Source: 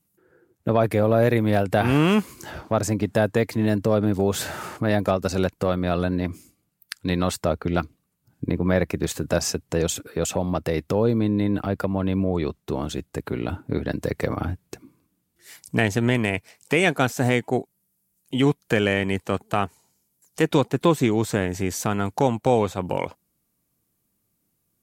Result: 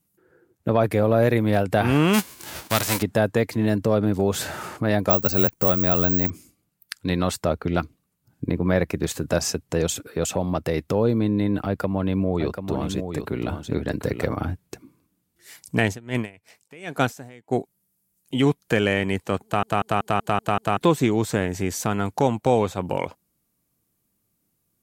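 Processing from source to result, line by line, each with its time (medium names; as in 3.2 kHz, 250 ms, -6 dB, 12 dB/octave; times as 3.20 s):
2.13–3.01 s: formants flattened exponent 0.3
5.10–6.30 s: careless resampling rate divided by 2×, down none, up zero stuff
11.66–14.29 s: delay 738 ms -7.5 dB
15.91–17.50 s: logarithmic tremolo 3.9 Hz -> 1.2 Hz, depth 25 dB
19.44 s: stutter in place 0.19 s, 7 plays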